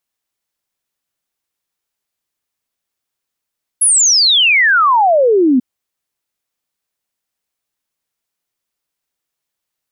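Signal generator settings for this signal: log sweep 11 kHz -> 240 Hz 1.79 s -7.5 dBFS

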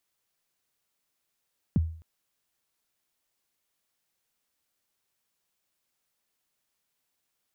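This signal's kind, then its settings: kick drum length 0.26 s, from 250 Hz, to 81 Hz, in 25 ms, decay 0.48 s, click off, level -17 dB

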